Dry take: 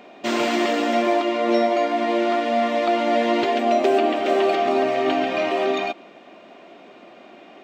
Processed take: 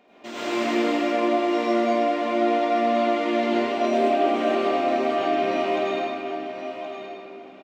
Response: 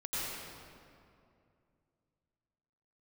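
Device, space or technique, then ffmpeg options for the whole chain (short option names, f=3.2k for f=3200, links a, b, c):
stairwell: -filter_complex "[1:a]atrim=start_sample=2205[a];[0:a][a]afir=irnorm=-1:irlink=0,aecho=1:1:1072:0.316,volume=-8dB"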